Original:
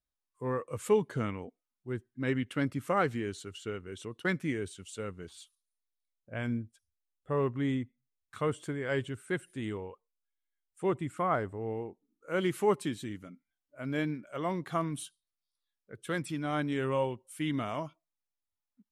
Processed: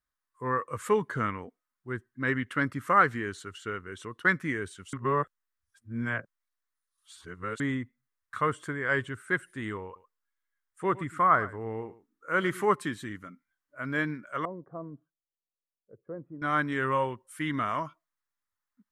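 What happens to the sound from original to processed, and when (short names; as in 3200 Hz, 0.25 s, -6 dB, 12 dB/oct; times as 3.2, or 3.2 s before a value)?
4.93–7.6 reverse
9.85–12.65 echo 0.108 s -17 dB
14.45–16.42 ladder low-pass 650 Hz, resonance 50%
whole clip: band shelf 1400 Hz +10.5 dB 1.2 oct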